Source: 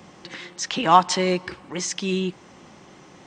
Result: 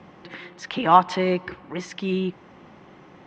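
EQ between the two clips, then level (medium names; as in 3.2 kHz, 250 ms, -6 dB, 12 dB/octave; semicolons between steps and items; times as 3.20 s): low-pass 2.6 kHz 12 dB/octave; 0.0 dB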